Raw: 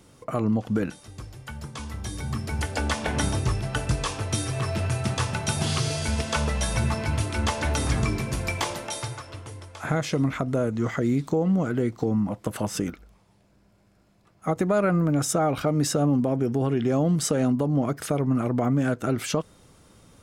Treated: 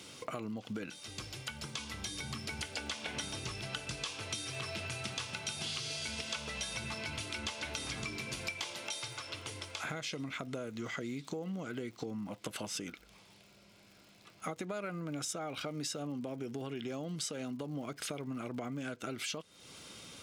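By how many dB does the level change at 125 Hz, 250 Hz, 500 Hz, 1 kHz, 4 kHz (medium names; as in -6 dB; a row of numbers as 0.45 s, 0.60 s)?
-19.5 dB, -16.5 dB, -15.5 dB, -14.5 dB, -4.5 dB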